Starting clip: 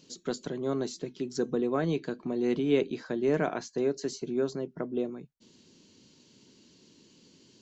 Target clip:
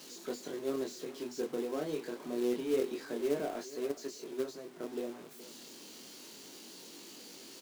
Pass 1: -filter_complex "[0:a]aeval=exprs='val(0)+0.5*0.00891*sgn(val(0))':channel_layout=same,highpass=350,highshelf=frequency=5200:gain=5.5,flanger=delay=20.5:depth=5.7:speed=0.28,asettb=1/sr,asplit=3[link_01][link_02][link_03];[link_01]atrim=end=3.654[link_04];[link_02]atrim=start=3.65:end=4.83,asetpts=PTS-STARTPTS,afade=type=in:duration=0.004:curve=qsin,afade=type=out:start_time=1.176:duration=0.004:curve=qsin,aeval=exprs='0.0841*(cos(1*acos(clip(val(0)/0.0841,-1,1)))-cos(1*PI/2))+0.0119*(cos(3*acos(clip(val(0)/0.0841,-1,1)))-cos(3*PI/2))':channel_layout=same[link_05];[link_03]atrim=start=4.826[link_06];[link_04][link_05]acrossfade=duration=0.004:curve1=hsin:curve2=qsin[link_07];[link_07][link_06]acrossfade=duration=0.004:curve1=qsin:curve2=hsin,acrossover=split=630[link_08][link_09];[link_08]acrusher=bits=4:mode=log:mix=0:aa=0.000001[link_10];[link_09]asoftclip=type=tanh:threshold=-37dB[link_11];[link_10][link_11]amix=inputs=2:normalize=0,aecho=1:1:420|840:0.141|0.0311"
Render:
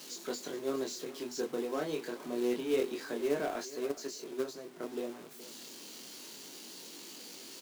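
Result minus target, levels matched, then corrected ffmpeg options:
soft clipping: distortion −7 dB
-filter_complex "[0:a]aeval=exprs='val(0)+0.5*0.00891*sgn(val(0))':channel_layout=same,highpass=350,highshelf=frequency=5200:gain=5.5,flanger=delay=20.5:depth=5.7:speed=0.28,asettb=1/sr,asplit=3[link_01][link_02][link_03];[link_01]atrim=end=3.654[link_04];[link_02]atrim=start=3.65:end=4.83,asetpts=PTS-STARTPTS,afade=type=in:duration=0.004:curve=qsin,afade=type=out:start_time=1.176:duration=0.004:curve=qsin,aeval=exprs='0.0841*(cos(1*acos(clip(val(0)/0.0841,-1,1)))-cos(1*PI/2))+0.0119*(cos(3*acos(clip(val(0)/0.0841,-1,1)))-cos(3*PI/2))':channel_layout=same[link_05];[link_03]atrim=start=4.826[link_06];[link_04][link_05]acrossfade=duration=0.004:curve1=hsin:curve2=qsin[link_07];[link_07][link_06]acrossfade=duration=0.004:curve1=qsin:curve2=hsin,acrossover=split=630[link_08][link_09];[link_08]acrusher=bits=4:mode=log:mix=0:aa=0.000001[link_10];[link_09]asoftclip=type=tanh:threshold=-47dB[link_11];[link_10][link_11]amix=inputs=2:normalize=0,aecho=1:1:420|840:0.141|0.0311"

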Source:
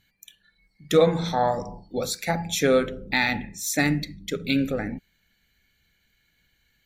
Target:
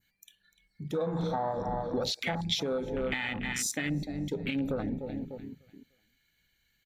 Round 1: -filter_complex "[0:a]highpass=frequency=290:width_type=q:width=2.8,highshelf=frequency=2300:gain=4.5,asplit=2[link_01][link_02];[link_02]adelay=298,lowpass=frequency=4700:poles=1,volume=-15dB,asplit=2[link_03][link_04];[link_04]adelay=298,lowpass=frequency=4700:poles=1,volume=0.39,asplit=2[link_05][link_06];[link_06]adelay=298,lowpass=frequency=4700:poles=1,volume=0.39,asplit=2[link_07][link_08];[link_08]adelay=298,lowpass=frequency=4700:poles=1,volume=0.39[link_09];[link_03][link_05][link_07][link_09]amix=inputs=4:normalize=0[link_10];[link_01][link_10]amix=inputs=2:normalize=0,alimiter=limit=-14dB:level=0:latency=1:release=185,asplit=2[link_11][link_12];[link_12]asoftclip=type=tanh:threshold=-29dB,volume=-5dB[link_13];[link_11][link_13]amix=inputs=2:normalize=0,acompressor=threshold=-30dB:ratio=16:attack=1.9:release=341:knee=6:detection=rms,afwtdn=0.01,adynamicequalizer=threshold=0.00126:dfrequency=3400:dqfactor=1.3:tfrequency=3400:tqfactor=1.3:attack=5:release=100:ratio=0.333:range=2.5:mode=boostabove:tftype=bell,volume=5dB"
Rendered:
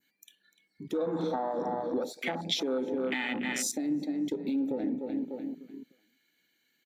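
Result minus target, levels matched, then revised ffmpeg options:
250 Hz band +2.5 dB
-filter_complex "[0:a]highshelf=frequency=2300:gain=4.5,asplit=2[link_01][link_02];[link_02]adelay=298,lowpass=frequency=4700:poles=1,volume=-15dB,asplit=2[link_03][link_04];[link_04]adelay=298,lowpass=frequency=4700:poles=1,volume=0.39,asplit=2[link_05][link_06];[link_06]adelay=298,lowpass=frequency=4700:poles=1,volume=0.39,asplit=2[link_07][link_08];[link_08]adelay=298,lowpass=frequency=4700:poles=1,volume=0.39[link_09];[link_03][link_05][link_07][link_09]amix=inputs=4:normalize=0[link_10];[link_01][link_10]amix=inputs=2:normalize=0,alimiter=limit=-14dB:level=0:latency=1:release=185,asplit=2[link_11][link_12];[link_12]asoftclip=type=tanh:threshold=-29dB,volume=-5dB[link_13];[link_11][link_13]amix=inputs=2:normalize=0,acompressor=threshold=-30dB:ratio=16:attack=1.9:release=341:knee=6:detection=rms,afwtdn=0.01,adynamicequalizer=threshold=0.00126:dfrequency=3400:dqfactor=1.3:tfrequency=3400:tqfactor=1.3:attack=5:release=100:ratio=0.333:range=2.5:mode=boostabove:tftype=bell,volume=5dB"

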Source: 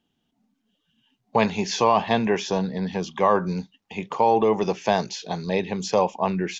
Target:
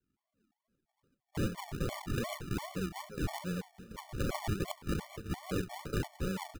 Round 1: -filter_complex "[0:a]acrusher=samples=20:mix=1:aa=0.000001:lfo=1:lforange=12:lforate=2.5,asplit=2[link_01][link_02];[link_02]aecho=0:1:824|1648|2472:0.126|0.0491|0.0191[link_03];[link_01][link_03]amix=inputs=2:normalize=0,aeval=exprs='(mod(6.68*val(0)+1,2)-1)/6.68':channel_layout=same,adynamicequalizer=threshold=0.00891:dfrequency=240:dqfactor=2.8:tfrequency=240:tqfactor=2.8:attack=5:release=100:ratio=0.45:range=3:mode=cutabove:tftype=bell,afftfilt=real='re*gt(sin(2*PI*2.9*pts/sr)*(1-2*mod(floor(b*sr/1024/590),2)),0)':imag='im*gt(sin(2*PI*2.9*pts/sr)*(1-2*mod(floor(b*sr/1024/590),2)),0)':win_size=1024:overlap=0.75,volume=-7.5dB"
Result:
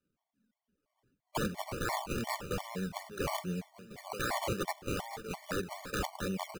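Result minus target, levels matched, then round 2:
sample-and-hold swept by an LFO: distortion −19 dB
-filter_complex "[0:a]acrusher=samples=67:mix=1:aa=0.000001:lfo=1:lforange=40.2:lforate=2.5,asplit=2[link_01][link_02];[link_02]aecho=0:1:824|1648|2472:0.126|0.0491|0.0191[link_03];[link_01][link_03]amix=inputs=2:normalize=0,aeval=exprs='(mod(6.68*val(0)+1,2)-1)/6.68':channel_layout=same,adynamicequalizer=threshold=0.00891:dfrequency=240:dqfactor=2.8:tfrequency=240:tqfactor=2.8:attack=5:release=100:ratio=0.45:range=3:mode=cutabove:tftype=bell,afftfilt=real='re*gt(sin(2*PI*2.9*pts/sr)*(1-2*mod(floor(b*sr/1024/590),2)),0)':imag='im*gt(sin(2*PI*2.9*pts/sr)*(1-2*mod(floor(b*sr/1024/590),2)),0)':win_size=1024:overlap=0.75,volume=-7.5dB"

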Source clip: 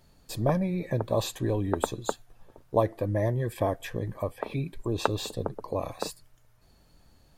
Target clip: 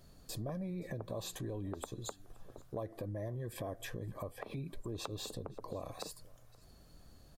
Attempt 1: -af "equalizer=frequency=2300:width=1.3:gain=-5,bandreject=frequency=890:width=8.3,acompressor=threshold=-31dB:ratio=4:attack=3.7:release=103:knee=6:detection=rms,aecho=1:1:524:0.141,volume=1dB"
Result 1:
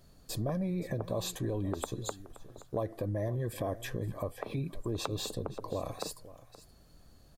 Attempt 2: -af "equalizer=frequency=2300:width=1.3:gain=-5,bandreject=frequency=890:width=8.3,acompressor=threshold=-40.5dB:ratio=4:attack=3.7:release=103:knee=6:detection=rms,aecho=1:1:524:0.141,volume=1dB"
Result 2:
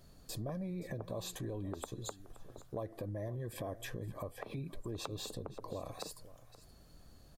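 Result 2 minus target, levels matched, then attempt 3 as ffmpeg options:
echo-to-direct +6.5 dB
-af "equalizer=frequency=2300:width=1.3:gain=-5,bandreject=frequency=890:width=8.3,acompressor=threshold=-40.5dB:ratio=4:attack=3.7:release=103:knee=6:detection=rms,aecho=1:1:524:0.0668,volume=1dB"

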